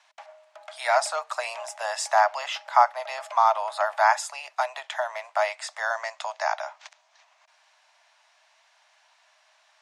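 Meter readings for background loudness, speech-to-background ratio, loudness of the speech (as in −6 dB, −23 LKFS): −45.5 LKFS, 19.5 dB, −26.0 LKFS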